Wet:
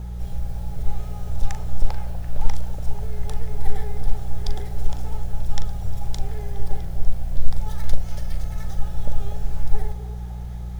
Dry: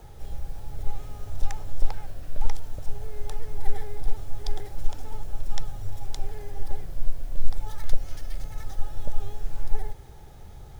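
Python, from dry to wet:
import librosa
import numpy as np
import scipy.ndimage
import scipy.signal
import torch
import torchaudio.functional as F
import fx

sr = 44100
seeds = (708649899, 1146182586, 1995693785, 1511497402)

y = fx.doubler(x, sr, ms=40.0, db=-10.5)
y = fx.echo_stepped(y, sr, ms=245, hz=560.0, octaves=0.7, feedback_pct=70, wet_db=-6.0)
y = fx.dmg_buzz(y, sr, base_hz=60.0, harmonics=3, level_db=-34.0, tilt_db=-8, odd_only=False)
y = y * librosa.db_to_amplitude(3.0)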